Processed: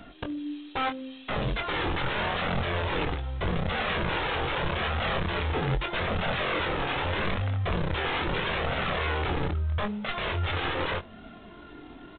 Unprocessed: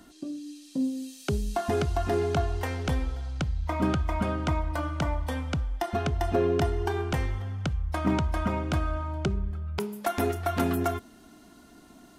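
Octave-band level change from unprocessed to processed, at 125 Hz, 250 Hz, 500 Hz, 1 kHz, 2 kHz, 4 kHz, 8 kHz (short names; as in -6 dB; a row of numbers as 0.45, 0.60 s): -1.5 dB, -4.0 dB, -1.5 dB, +2.0 dB, +8.5 dB, +9.0 dB, under -35 dB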